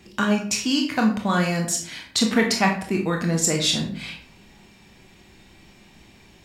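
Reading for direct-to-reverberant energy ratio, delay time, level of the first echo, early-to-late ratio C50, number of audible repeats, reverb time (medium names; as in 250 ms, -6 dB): 1.5 dB, no echo, no echo, 7.0 dB, no echo, 0.50 s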